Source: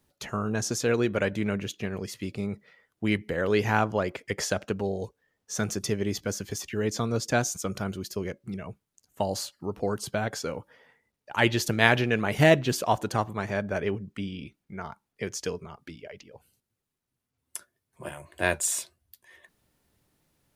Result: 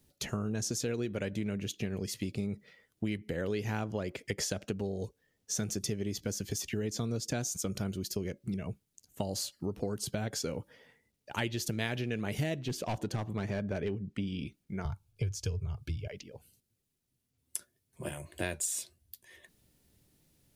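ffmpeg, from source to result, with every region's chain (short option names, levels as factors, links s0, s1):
-filter_complex "[0:a]asettb=1/sr,asplit=3[s0][s1][s2];[s0]atrim=end=12.684[s3];[s1]atrim=start=12.68:end=14.27,asetpts=PTS-STARTPTS,afade=t=in:d=0.004:c=qsin,afade=t=out:st=1.586:d=0.004:c=qsin,asoftclip=type=hard:threshold=0.0794,aemphasis=mode=reproduction:type=cd[s4];[s2]atrim=start=14.266[s5];[s3][s4]acrossfade=d=0.004:c1=hsin:c2=qsin[s6];[s6][s5]acrossfade=d=0.004:c1=qsin:c2=hsin,asettb=1/sr,asplit=3[s7][s8][s9];[s7]atrim=end=14.854[s10];[s8]atrim=start=14.85:end=16.08,asetpts=PTS-STARTPTS,afade=t=in:d=0.004:c=qsin,afade=t=out:st=1.226:d=0.004:c=qsin,asuperstop=centerf=1900:order=12:qfactor=5.9,lowshelf=f=150:t=q:w=3:g=13[s11];[s9]atrim=start=16.076[s12];[s10][s11]acrossfade=d=0.004:c1=hsin:c2=qsin[s13];[s13][s12]acrossfade=d=0.004:c1=qsin:c2=hsin,equalizer=f=1100:t=o:w=2:g=-10.5,acompressor=threshold=0.0178:ratio=6,volume=1.58"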